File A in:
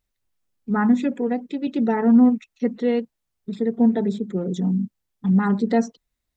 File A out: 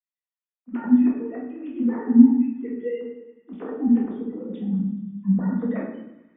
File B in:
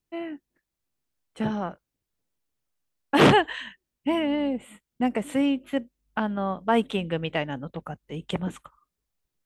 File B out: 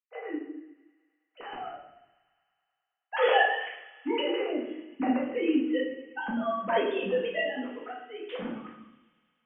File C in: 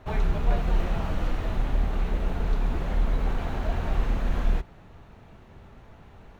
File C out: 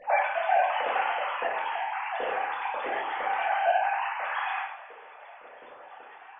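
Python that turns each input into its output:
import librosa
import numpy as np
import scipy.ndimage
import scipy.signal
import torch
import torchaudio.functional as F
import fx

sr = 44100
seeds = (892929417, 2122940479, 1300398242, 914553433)

y = fx.sine_speech(x, sr)
y = fx.echo_wet_highpass(y, sr, ms=106, feedback_pct=79, hz=1500.0, wet_db=-20.0)
y = fx.room_shoebox(y, sr, seeds[0], volume_m3=220.0, walls='mixed', distance_m=1.9)
y = y * 10.0 ** (-11.0 / 20.0)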